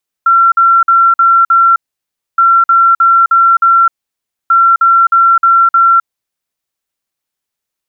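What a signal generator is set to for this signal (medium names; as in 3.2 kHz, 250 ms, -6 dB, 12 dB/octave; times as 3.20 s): beep pattern sine 1.36 kHz, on 0.26 s, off 0.05 s, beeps 5, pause 0.62 s, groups 3, -4 dBFS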